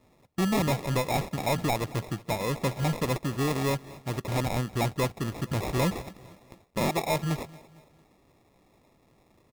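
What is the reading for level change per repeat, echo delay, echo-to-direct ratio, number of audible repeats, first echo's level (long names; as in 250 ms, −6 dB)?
−6.5 dB, 227 ms, −20.0 dB, 3, −21.0 dB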